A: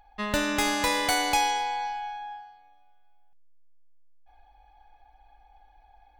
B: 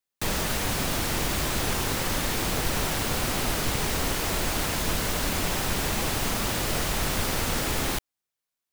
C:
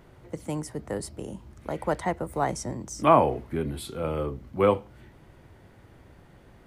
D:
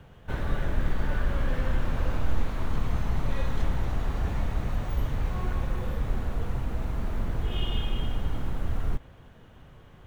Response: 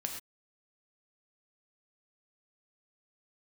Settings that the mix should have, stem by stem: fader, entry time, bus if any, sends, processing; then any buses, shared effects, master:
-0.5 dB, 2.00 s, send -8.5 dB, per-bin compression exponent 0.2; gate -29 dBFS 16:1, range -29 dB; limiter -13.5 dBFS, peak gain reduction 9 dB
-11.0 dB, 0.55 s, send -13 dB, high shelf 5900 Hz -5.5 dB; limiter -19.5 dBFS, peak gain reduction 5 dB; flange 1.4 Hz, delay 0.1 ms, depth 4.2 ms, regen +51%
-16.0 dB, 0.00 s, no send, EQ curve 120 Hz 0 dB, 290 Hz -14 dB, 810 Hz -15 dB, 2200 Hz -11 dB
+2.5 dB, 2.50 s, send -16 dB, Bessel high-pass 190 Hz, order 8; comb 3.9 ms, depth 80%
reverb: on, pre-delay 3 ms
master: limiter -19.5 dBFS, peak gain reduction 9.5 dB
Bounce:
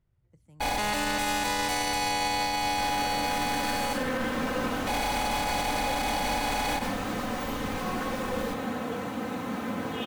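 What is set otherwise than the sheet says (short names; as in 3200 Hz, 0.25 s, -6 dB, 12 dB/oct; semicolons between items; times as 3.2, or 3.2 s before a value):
stem A: entry 2.00 s -> 0.60 s; reverb return +8.0 dB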